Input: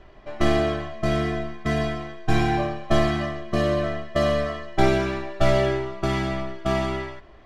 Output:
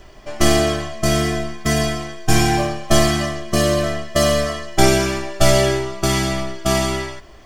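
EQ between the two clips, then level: tone controls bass +1 dB, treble +14 dB; high shelf 6500 Hz +8 dB; notch 3900 Hz, Q 11; +4.5 dB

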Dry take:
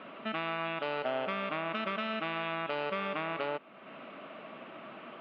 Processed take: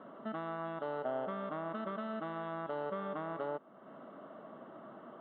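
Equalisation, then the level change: running mean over 18 samples; -2.0 dB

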